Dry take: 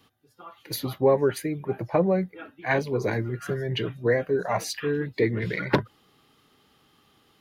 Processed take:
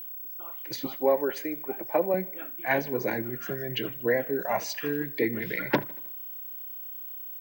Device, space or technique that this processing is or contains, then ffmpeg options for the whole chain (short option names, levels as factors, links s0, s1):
old television with a line whistle: -filter_complex "[0:a]asettb=1/sr,asplit=3[s0][s1][s2];[s0]atrim=end=0.864[s3];[s1]atrim=start=0.86:end=2.14,asetpts=PTS-STARTPTS,afade=t=in:d=0.004:c=qsin,afade=t=out:st=1.276:d=0.004:c=qsin,highpass=300[s4];[s2]atrim=start=2.136[s5];[s3][s4]acrossfade=d=0.004:c1=hsin:c2=qsin[s6];[s6][s5]acrossfade=d=0.004:c1=qsin:c2=hsin,highpass=f=160:w=0.5412,highpass=f=160:w=1.3066,equalizer=f=180:t=q:w=4:g=-7,equalizer=f=420:t=q:w=4:g=-6,equalizer=f=1200:t=q:w=4:g=-7,equalizer=f=4100:t=q:w=4:g=-6,lowpass=f=7000:w=0.5412,lowpass=f=7000:w=1.3066,aeval=exprs='val(0)+0.0141*sin(2*PI*15734*n/s)':c=same,aecho=1:1:78|156|234|312:0.0841|0.0463|0.0255|0.014"